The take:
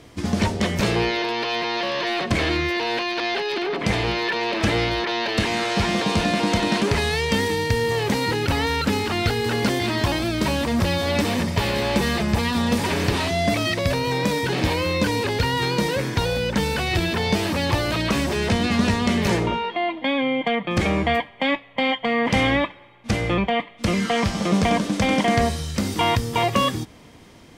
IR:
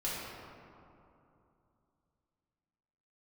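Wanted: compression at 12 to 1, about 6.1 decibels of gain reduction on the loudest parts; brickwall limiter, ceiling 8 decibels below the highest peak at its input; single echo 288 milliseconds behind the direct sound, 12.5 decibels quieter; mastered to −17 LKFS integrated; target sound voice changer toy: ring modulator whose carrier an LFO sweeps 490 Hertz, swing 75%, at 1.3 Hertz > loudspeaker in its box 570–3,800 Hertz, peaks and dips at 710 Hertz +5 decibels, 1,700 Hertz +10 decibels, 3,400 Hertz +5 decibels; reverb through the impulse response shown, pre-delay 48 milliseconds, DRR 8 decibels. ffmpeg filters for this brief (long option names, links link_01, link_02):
-filter_complex "[0:a]acompressor=threshold=-22dB:ratio=12,alimiter=limit=-18.5dB:level=0:latency=1,aecho=1:1:288:0.237,asplit=2[link_01][link_02];[1:a]atrim=start_sample=2205,adelay=48[link_03];[link_02][link_03]afir=irnorm=-1:irlink=0,volume=-13dB[link_04];[link_01][link_04]amix=inputs=2:normalize=0,aeval=exprs='val(0)*sin(2*PI*490*n/s+490*0.75/1.3*sin(2*PI*1.3*n/s))':channel_layout=same,highpass=570,equalizer=frequency=710:width_type=q:width=4:gain=5,equalizer=frequency=1700:width_type=q:width=4:gain=10,equalizer=frequency=3400:width_type=q:width=4:gain=5,lowpass=frequency=3800:width=0.5412,lowpass=frequency=3800:width=1.3066,volume=11.5dB"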